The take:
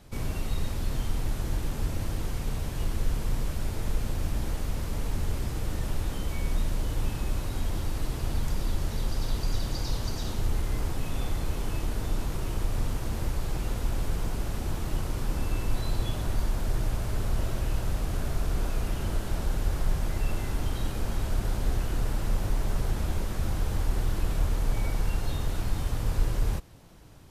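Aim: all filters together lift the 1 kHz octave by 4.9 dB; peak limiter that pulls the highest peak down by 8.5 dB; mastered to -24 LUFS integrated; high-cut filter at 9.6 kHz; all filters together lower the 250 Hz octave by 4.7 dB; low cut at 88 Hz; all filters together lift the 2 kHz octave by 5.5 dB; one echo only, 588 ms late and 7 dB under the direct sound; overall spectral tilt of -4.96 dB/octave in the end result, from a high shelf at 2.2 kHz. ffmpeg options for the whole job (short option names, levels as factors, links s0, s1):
-af "highpass=88,lowpass=9600,equalizer=f=250:t=o:g=-7,equalizer=f=1000:t=o:g=5.5,equalizer=f=2000:t=o:g=7.5,highshelf=f=2200:g=-4,alimiter=level_in=1.88:limit=0.0631:level=0:latency=1,volume=0.531,aecho=1:1:588:0.447,volume=5.31"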